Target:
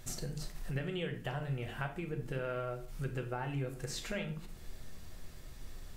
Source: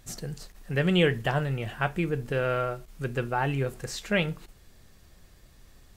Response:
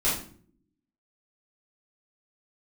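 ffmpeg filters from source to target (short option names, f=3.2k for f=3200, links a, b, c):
-filter_complex "[0:a]acompressor=threshold=-41dB:ratio=5,asplit=2[a][b];[1:a]atrim=start_sample=2205[c];[b][c]afir=irnorm=-1:irlink=0,volume=-15dB[d];[a][d]amix=inputs=2:normalize=0,volume=1dB"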